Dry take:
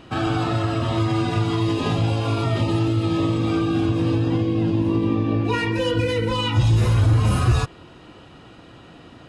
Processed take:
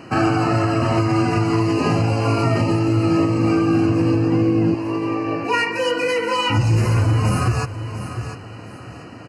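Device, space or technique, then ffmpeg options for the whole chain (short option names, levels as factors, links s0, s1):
PA system with an anti-feedback notch: -filter_complex "[0:a]asettb=1/sr,asplit=3[s0][s1][s2];[s0]atrim=end=4.744[s3];[s1]atrim=start=4.74:end=6.5,asetpts=PTS-STARTPTS,afade=t=in:d=0.004:c=qsin,afade=t=out:st=1.756:d=0.004:c=qsin,highpass=510[s4];[s2]atrim=start=6.496[s5];[s3][s4]acrossfade=d=0.004:c1=hsin:c2=qsin[s6];[s6][s5]acrossfade=d=0.004:c1=qsin:c2=hsin,highpass=110,asuperstop=centerf=3500:order=8:qfactor=2.9,aecho=1:1:697|1394|2091:0.188|0.0546|0.0158,alimiter=limit=0.178:level=0:latency=1:release=419,volume=2.11"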